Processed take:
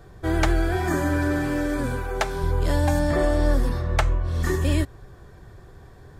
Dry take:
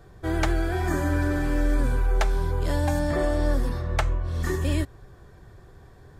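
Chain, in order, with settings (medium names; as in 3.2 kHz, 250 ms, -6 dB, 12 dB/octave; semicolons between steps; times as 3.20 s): 0.76–2.43 s: high-pass 88 Hz 12 dB/octave; trim +3 dB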